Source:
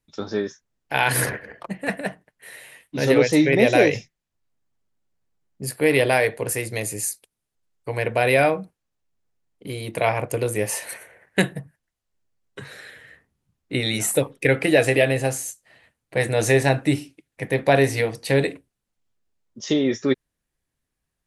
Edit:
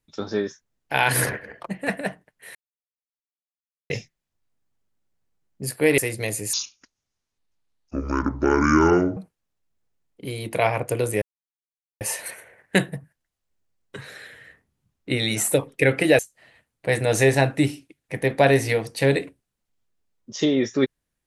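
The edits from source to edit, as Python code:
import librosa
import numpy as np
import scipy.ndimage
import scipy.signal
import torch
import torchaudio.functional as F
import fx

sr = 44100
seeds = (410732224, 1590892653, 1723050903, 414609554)

y = fx.edit(x, sr, fx.silence(start_s=2.55, length_s=1.35),
    fx.cut(start_s=5.98, length_s=0.53),
    fx.speed_span(start_s=7.06, length_s=1.53, speed=0.58),
    fx.insert_silence(at_s=10.64, length_s=0.79),
    fx.cut(start_s=14.82, length_s=0.65), tone=tone)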